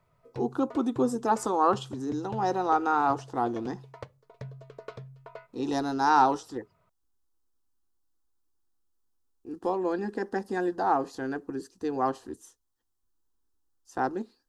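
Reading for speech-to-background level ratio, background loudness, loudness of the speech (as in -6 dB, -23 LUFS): 17.5 dB, -46.0 LUFS, -28.5 LUFS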